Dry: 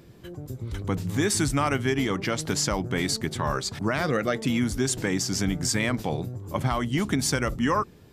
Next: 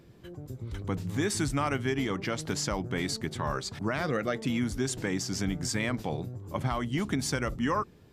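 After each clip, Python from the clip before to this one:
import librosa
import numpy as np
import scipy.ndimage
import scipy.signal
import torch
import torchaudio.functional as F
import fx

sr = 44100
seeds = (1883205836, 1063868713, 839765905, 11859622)

y = fx.high_shelf(x, sr, hz=6800.0, db=-5.0)
y = y * 10.0 ** (-4.5 / 20.0)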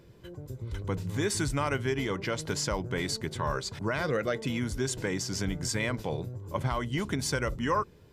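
y = x + 0.34 * np.pad(x, (int(2.0 * sr / 1000.0), 0))[:len(x)]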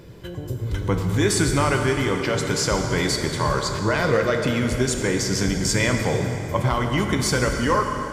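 y = fx.rider(x, sr, range_db=4, speed_s=2.0)
y = fx.rev_plate(y, sr, seeds[0], rt60_s=3.3, hf_ratio=0.75, predelay_ms=0, drr_db=3.0)
y = y * 10.0 ** (7.5 / 20.0)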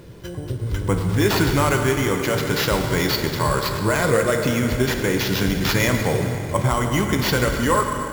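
y = fx.sample_hold(x, sr, seeds[1], rate_hz=8900.0, jitter_pct=0)
y = y * 10.0 ** (1.5 / 20.0)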